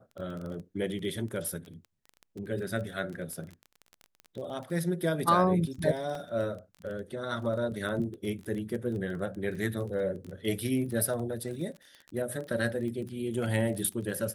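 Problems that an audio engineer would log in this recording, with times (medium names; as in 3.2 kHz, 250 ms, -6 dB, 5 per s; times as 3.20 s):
crackle 19 per s -36 dBFS
6.15 s: dropout 2.4 ms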